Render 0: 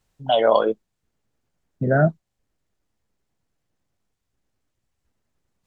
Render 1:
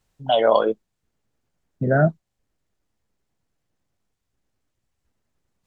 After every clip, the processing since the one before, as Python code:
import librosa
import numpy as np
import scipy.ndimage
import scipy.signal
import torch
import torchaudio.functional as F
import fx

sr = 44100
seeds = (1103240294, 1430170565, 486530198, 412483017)

y = x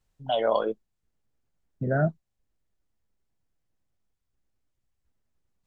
y = fx.low_shelf(x, sr, hz=68.0, db=8.5)
y = y * 10.0 ** (-7.5 / 20.0)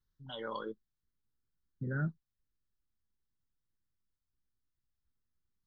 y = fx.fixed_phaser(x, sr, hz=2500.0, stages=6)
y = y * 10.0 ** (-7.5 / 20.0)